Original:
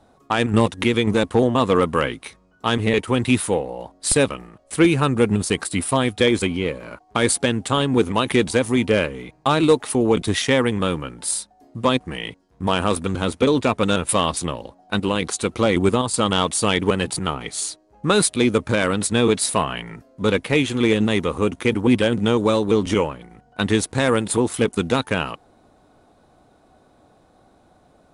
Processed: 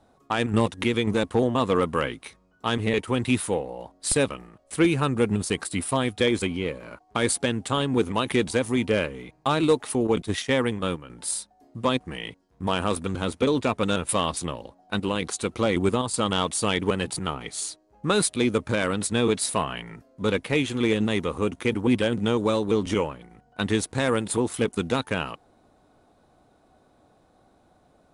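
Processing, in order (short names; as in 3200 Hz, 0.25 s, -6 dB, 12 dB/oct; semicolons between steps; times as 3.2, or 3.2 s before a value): 10.07–11.1 gate -21 dBFS, range -8 dB; gain -5 dB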